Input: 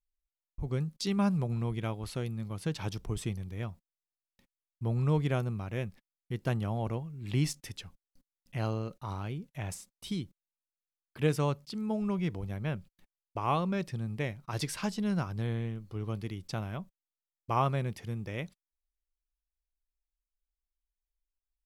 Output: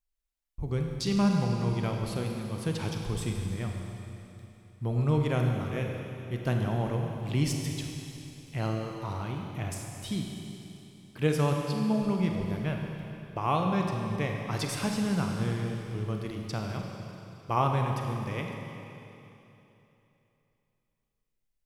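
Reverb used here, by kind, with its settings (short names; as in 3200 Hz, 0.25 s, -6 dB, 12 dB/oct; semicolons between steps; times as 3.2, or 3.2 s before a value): Schroeder reverb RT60 3.1 s, combs from 33 ms, DRR 1.5 dB; gain +1.5 dB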